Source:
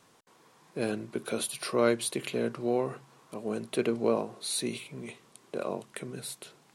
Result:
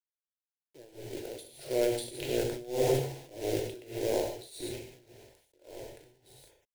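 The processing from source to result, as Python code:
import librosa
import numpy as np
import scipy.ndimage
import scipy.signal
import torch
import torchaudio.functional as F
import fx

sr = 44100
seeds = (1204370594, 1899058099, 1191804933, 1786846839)

p1 = fx.wiener(x, sr, points=25)
p2 = fx.doppler_pass(p1, sr, speed_mps=7, closest_m=2.7, pass_at_s=2.76)
p3 = fx.high_shelf(p2, sr, hz=2600.0, db=-7.0)
p4 = fx.over_compress(p3, sr, threshold_db=-38.0, ratio=-0.5)
p5 = p3 + F.gain(torch.from_numpy(p4), -2.5).numpy()
p6 = fx.transient(p5, sr, attack_db=-5, sustain_db=8)
p7 = fx.low_shelf(p6, sr, hz=61.0, db=11.5)
p8 = fx.quant_companded(p7, sr, bits=4)
p9 = fx.fixed_phaser(p8, sr, hz=490.0, stages=4)
p10 = fx.rev_gated(p9, sr, seeds[0], gate_ms=180, shape='flat', drr_db=-0.5)
p11 = p10 * (1.0 - 0.95 / 2.0 + 0.95 / 2.0 * np.cos(2.0 * np.pi * 1.7 * (np.arange(len(p10)) / sr)))
p12 = fx.sustainer(p11, sr, db_per_s=84.0)
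y = F.gain(torch.from_numpy(p12), 3.5).numpy()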